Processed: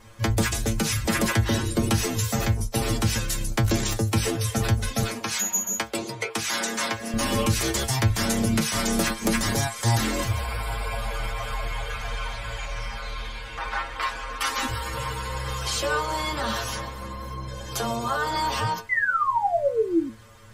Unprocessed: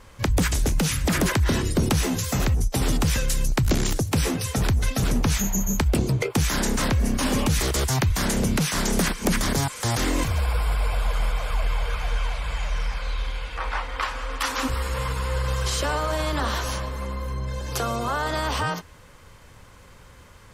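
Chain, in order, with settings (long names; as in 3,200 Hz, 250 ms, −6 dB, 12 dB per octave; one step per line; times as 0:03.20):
0:05.05–0:07.14: meter weighting curve A
0:18.89–0:20.10: sound drawn into the spectrogram fall 260–2,100 Hz −23 dBFS
stiff-string resonator 110 Hz, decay 0.22 s, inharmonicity 0.002
level +8.5 dB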